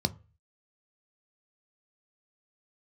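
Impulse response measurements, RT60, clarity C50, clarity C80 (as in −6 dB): 0.35 s, 22.5 dB, 28.0 dB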